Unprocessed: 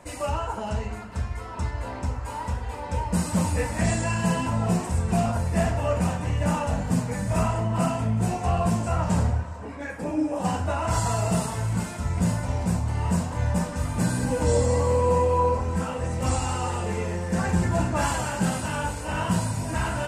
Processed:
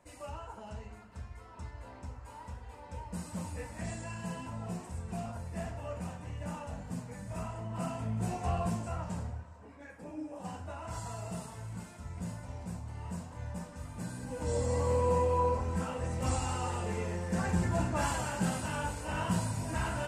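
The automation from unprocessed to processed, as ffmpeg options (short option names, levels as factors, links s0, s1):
-af "volume=1.12,afade=t=in:st=7.54:d=0.93:silence=0.421697,afade=t=out:st=8.47:d=0.73:silence=0.398107,afade=t=in:st=14.26:d=0.66:silence=0.354813"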